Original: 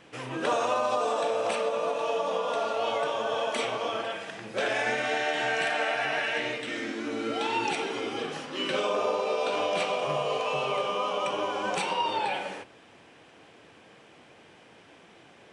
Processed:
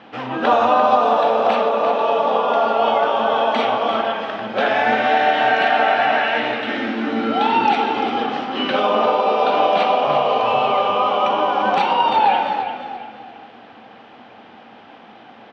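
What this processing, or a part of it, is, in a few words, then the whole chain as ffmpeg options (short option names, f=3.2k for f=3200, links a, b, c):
frequency-shifting delay pedal into a guitar cabinet: -filter_complex "[0:a]asplit=5[a][b][c][d][e];[b]adelay=344,afreqshift=-32,volume=-9dB[f];[c]adelay=688,afreqshift=-64,volume=-17.9dB[g];[d]adelay=1032,afreqshift=-96,volume=-26.7dB[h];[e]adelay=1376,afreqshift=-128,volume=-35.6dB[i];[a][f][g][h][i]amix=inputs=5:normalize=0,highpass=110,equalizer=f=160:t=q:w=4:g=-7,equalizer=f=230:t=q:w=4:g=10,equalizer=f=380:t=q:w=4:g=-4,equalizer=f=790:t=q:w=4:g=10,equalizer=f=1.3k:t=q:w=4:g=4,equalizer=f=2.3k:t=q:w=4:g=-3,lowpass=f=4.1k:w=0.5412,lowpass=f=4.1k:w=1.3066,asettb=1/sr,asplit=3[j][k][l];[j]atrim=end=2.464[m];[k]atrim=start=2.46:end=3.17,asetpts=PTS-STARTPTS,afade=t=in:d=0.004:c=qsin,afade=t=out:st=0.706:d=0.004:c=qsin,bandreject=f=3.9k:w=11[n];[l]atrim=start=3.166[o];[m][n]acrossfade=d=0.004:c1=hsin:c2=qsin[p];[p][o]acrossfade=d=0.004:c1=qsin:c2=hsin,volume=8dB"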